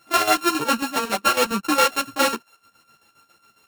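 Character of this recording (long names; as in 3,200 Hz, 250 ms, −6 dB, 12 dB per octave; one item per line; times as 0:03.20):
a buzz of ramps at a fixed pitch in blocks of 32 samples
chopped level 7.3 Hz, depth 65%, duty 60%
a shimmering, thickened sound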